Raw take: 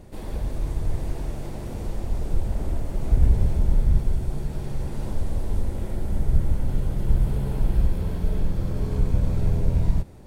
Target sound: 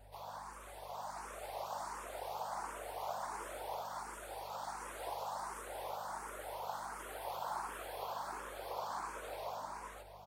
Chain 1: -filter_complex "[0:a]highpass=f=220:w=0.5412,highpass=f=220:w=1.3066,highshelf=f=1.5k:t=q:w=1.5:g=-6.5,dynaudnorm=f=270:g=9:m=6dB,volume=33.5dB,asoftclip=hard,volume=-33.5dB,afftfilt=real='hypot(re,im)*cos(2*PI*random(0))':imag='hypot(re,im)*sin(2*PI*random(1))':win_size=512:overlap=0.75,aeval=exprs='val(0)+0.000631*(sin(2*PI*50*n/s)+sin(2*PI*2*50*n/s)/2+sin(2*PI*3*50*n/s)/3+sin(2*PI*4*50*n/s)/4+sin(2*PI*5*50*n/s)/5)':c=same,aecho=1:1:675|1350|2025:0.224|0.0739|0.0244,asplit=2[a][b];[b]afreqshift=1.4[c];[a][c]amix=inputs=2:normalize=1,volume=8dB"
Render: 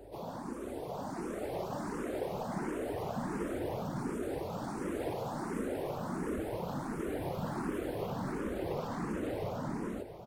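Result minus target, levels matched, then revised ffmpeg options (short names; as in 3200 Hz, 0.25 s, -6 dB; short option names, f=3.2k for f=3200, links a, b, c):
250 Hz band +18.0 dB
-filter_complex "[0:a]highpass=f=770:w=0.5412,highpass=f=770:w=1.3066,highshelf=f=1.5k:t=q:w=1.5:g=-6.5,dynaudnorm=f=270:g=9:m=6dB,volume=33.5dB,asoftclip=hard,volume=-33.5dB,afftfilt=real='hypot(re,im)*cos(2*PI*random(0))':imag='hypot(re,im)*sin(2*PI*random(1))':win_size=512:overlap=0.75,aeval=exprs='val(0)+0.000631*(sin(2*PI*50*n/s)+sin(2*PI*2*50*n/s)/2+sin(2*PI*3*50*n/s)/3+sin(2*PI*4*50*n/s)/4+sin(2*PI*5*50*n/s)/5)':c=same,aecho=1:1:675|1350|2025:0.224|0.0739|0.0244,asplit=2[a][b];[b]afreqshift=1.4[c];[a][c]amix=inputs=2:normalize=1,volume=8dB"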